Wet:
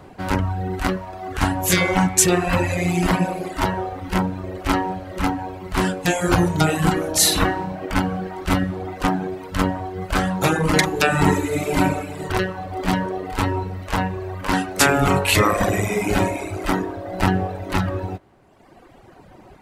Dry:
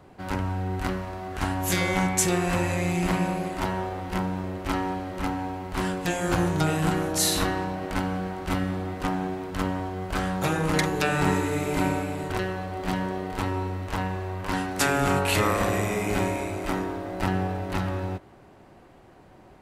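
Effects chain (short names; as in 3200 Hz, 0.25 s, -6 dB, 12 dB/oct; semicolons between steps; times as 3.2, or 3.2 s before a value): reverb removal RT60 1.4 s; gain +8.5 dB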